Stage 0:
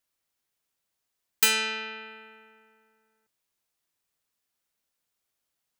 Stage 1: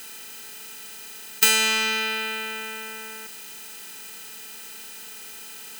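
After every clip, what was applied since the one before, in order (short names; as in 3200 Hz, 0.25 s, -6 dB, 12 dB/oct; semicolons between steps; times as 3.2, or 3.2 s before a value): per-bin compression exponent 0.4; in parallel at -10 dB: wrapped overs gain 21.5 dB; on the sum: gain +2.5 dB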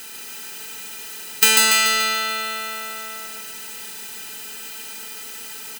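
feedback echo 0.144 s, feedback 56%, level -3 dB; gain +3 dB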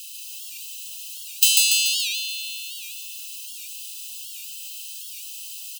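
brick-wall FIR high-pass 2500 Hz; record warp 78 rpm, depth 160 cents; gain -1 dB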